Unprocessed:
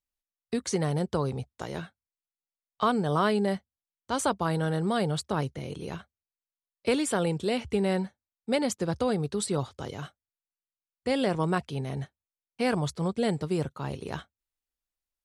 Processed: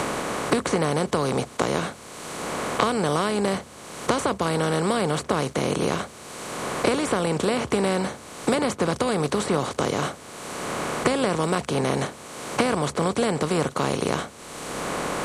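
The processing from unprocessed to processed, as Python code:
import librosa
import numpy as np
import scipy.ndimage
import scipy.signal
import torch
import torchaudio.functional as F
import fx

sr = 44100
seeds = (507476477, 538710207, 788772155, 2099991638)

y = fx.bin_compress(x, sr, power=0.4)
y = fx.band_squash(y, sr, depth_pct=100)
y = y * librosa.db_to_amplitude(-1.5)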